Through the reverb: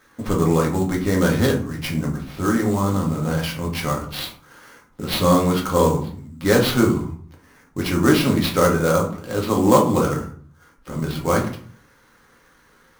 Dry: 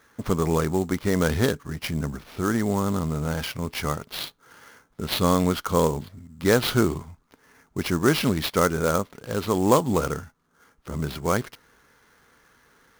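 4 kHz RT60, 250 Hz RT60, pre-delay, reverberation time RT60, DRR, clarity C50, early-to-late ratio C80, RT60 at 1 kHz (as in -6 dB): 0.30 s, 0.65 s, 3 ms, 0.50 s, -1.5 dB, 9.5 dB, 13.5 dB, 0.50 s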